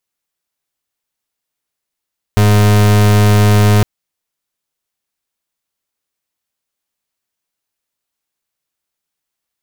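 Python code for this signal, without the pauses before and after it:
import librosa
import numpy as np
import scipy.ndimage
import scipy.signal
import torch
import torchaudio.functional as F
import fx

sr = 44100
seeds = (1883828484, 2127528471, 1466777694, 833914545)

y = fx.pulse(sr, length_s=1.46, hz=104.0, level_db=-8.5, duty_pct=37)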